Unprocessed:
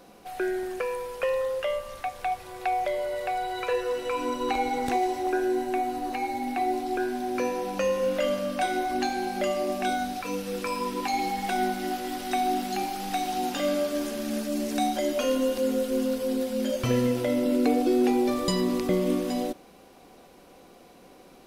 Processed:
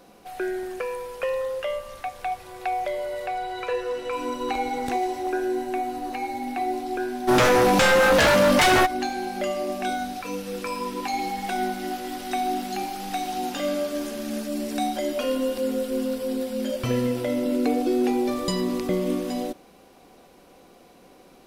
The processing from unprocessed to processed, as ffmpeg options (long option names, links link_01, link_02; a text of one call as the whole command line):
ffmpeg -i in.wav -filter_complex "[0:a]asettb=1/sr,asplit=3[link_01][link_02][link_03];[link_01]atrim=end=3.264[link_04];[link_02]atrim=start=3.26:end=4.13,asetpts=PTS-STARTPTS,afade=type=in:duration=0.004:curve=qsin,afade=type=out:start_time=0.866:duration=0.004:curve=qsin,highshelf=frequency=9100:gain=-8.5[link_05];[link_03]atrim=start=4.126[link_06];[link_04][link_05]acrossfade=duration=0.004:curve1=hsin:curve2=qsin[link_07];[link_07][link_06]acrossfade=duration=0.004:curve1=qsin:curve2=hsin,asplit=3[link_08][link_09][link_10];[link_08]afade=type=out:start_time=7.27:duration=0.02[link_11];[link_09]aeval=exprs='0.2*sin(PI/2*4.47*val(0)/0.2)':channel_layout=same,afade=type=in:start_time=7.27:duration=0.02,afade=type=out:start_time=8.85:duration=0.02[link_12];[link_10]afade=type=in:start_time=8.85:duration=0.02[link_13];[link_11][link_12][link_13]amix=inputs=3:normalize=0,asettb=1/sr,asplit=3[link_14][link_15][link_16];[link_14]atrim=end=14.484[link_17];[link_15]atrim=start=14.48:end=17.25,asetpts=PTS-STARTPTS,afade=type=in:duration=0.004:curve=qsin,afade=type=out:start_time=2.766:duration=0.004:curve=qsin,bandreject=frequency=6400:width=12[link_18];[link_16]atrim=start=17.246[link_19];[link_17][link_18]acrossfade=duration=0.004:curve1=hsin:curve2=qsin[link_20];[link_20][link_19]acrossfade=duration=0.004:curve1=qsin:curve2=hsin" out.wav